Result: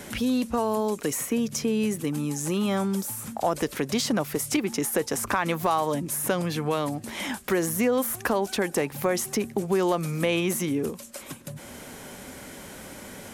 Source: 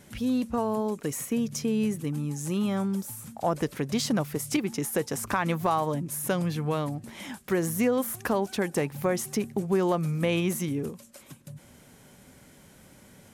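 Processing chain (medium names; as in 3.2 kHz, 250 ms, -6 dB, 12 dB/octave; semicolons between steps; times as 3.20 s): in parallel at -1 dB: peak limiter -23 dBFS, peak gain reduction 10 dB; on the sum: peaking EQ 140 Hz -8 dB 1.2 oct; three bands compressed up and down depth 40%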